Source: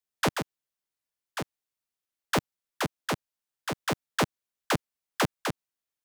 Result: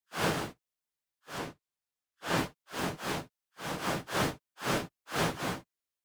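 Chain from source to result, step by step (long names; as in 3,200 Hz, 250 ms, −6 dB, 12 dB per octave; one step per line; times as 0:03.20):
random phases in long frames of 200 ms
0:01.38–0:02.38: high-shelf EQ 10,000 Hz −5 dB
level −2 dB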